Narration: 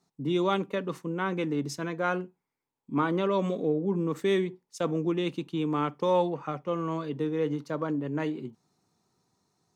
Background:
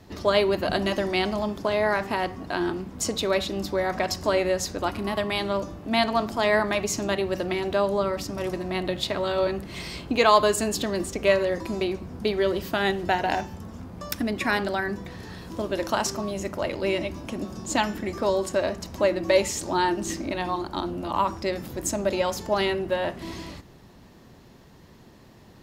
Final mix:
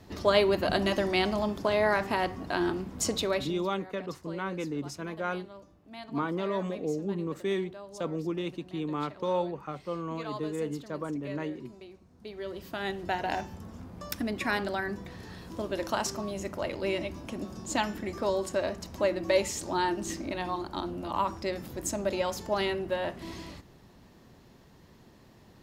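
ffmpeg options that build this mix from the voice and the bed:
-filter_complex "[0:a]adelay=3200,volume=0.596[s0];[1:a]volume=5.62,afade=t=out:st=3.14:d=0.53:silence=0.1,afade=t=in:st=12.15:d=1.34:silence=0.141254[s1];[s0][s1]amix=inputs=2:normalize=0"

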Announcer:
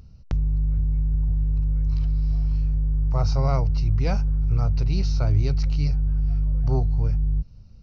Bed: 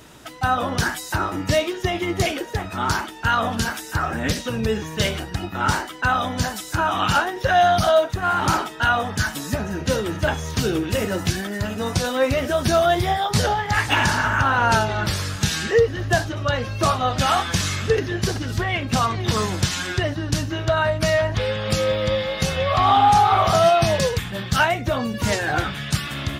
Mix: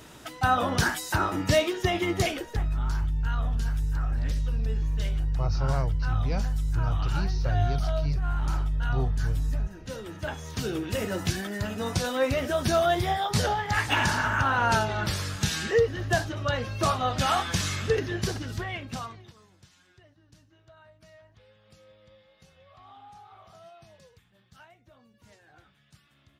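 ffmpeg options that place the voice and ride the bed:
-filter_complex "[0:a]adelay=2250,volume=0.562[s0];[1:a]volume=3.16,afade=t=out:st=2.04:d=0.76:silence=0.16788,afade=t=in:st=9.8:d=1.48:silence=0.237137,afade=t=out:st=18.16:d=1.17:silence=0.0334965[s1];[s0][s1]amix=inputs=2:normalize=0"

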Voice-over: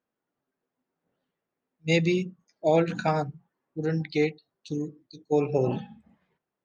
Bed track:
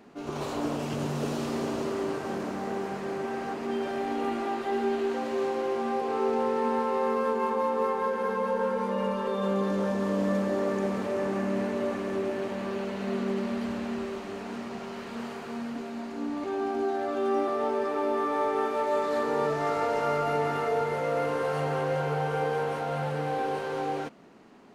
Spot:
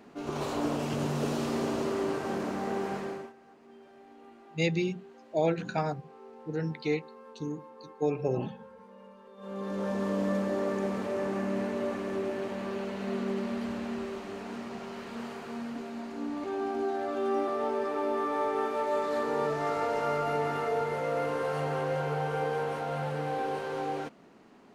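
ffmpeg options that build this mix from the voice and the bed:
-filter_complex "[0:a]adelay=2700,volume=0.562[s0];[1:a]volume=10.6,afade=t=out:st=2.96:d=0.37:silence=0.0707946,afade=t=in:st=9.36:d=0.61:silence=0.0944061[s1];[s0][s1]amix=inputs=2:normalize=0"

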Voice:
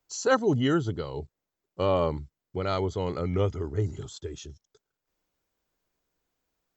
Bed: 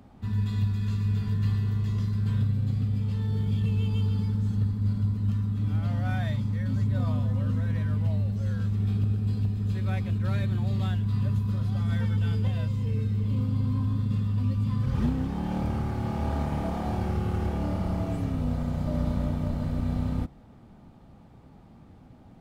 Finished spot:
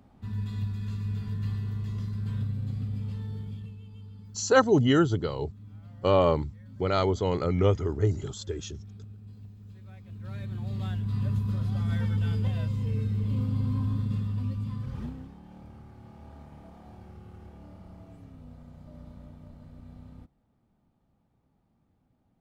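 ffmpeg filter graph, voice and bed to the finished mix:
-filter_complex "[0:a]adelay=4250,volume=1.41[s0];[1:a]volume=4.22,afade=t=out:st=3.07:d=0.71:silence=0.199526,afade=t=in:st=10.02:d=1.35:silence=0.125893,afade=t=out:st=13.94:d=1.46:silence=0.125893[s1];[s0][s1]amix=inputs=2:normalize=0"

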